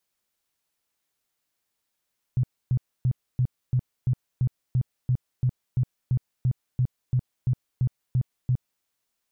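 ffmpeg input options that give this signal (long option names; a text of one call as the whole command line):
ffmpeg -f lavfi -i "aevalsrc='0.119*sin(2*PI*126*mod(t,0.34))*lt(mod(t,0.34),8/126)':duration=6.46:sample_rate=44100" out.wav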